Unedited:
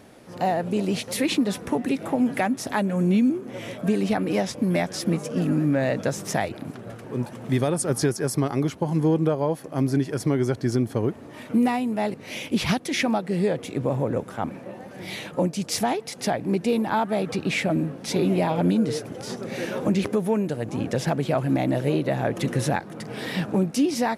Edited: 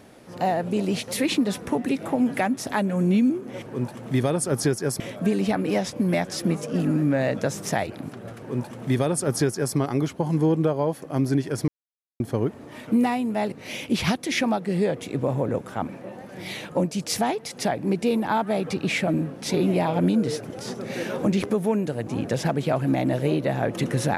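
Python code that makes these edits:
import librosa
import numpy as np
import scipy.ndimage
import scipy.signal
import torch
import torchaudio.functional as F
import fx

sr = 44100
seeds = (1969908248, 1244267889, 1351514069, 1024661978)

y = fx.edit(x, sr, fx.duplicate(start_s=7.0, length_s=1.38, to_s=3.62),
    fx.silence(start_s=10.3, length_s=0.52), tone=tone)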